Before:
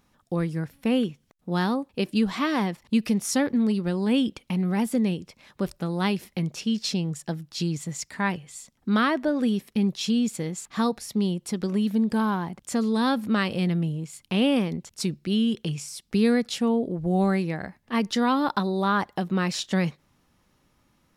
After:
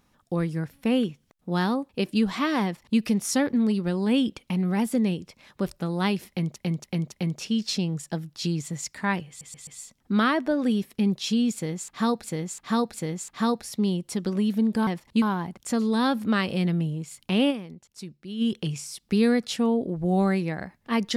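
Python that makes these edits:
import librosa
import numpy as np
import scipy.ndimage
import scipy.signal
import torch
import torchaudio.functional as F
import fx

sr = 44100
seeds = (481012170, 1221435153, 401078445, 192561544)

y = fx.edit(x, sr, fx.duplicate(start_s=2.64, length_s=0.35, to_s=12.24),
    fx.repeat(start_s=6.28, length_s=0.28, count=4),
    fx.stutter(start_s=8.44, slice_s=0.13, count=4),
    fx.repeat(start_s=10.31, length_s=0.7, count=3),
    fx.fade_down_up(start_s=14.52, length_s=0.92, db=-12.0, fade_s=0.21, curve='exp'), tone=tone)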